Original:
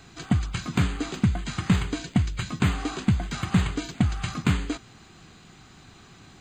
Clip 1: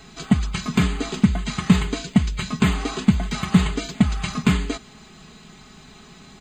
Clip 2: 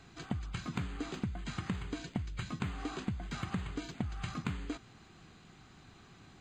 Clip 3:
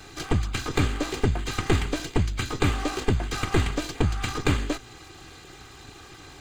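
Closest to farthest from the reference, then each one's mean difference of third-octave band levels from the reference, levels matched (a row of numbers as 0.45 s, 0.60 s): 1, 2, 3; 2.0 dB, 4.0 dB, 6.0 dB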